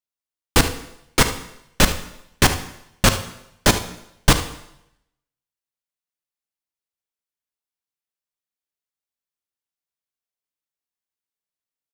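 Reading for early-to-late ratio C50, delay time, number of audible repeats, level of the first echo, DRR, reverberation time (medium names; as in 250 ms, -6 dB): 10.0 dB, 74 ms, 1, -13.5 dB, 7.5 dB, 0.80 s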